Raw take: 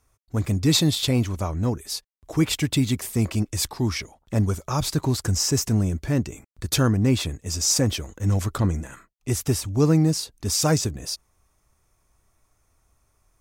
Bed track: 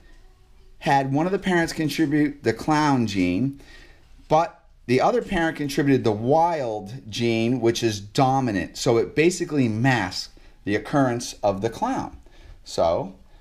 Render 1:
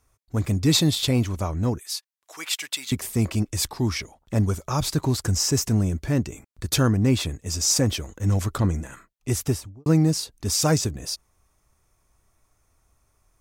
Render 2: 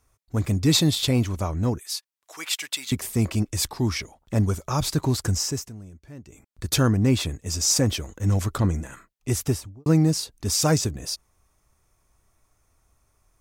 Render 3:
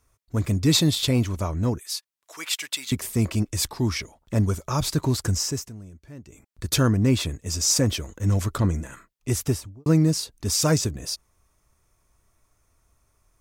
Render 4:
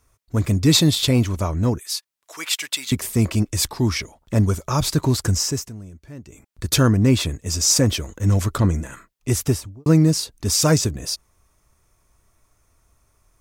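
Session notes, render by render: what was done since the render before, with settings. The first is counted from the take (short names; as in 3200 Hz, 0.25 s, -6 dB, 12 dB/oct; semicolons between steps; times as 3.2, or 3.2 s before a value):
1.79–2.92 HPF 1200 Hz; 9.41–9.86 studio fade out
5.28–6.68 dip -19.5 dB, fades 0.45 s
notch 780 Hz, Q 12
gain +4 dB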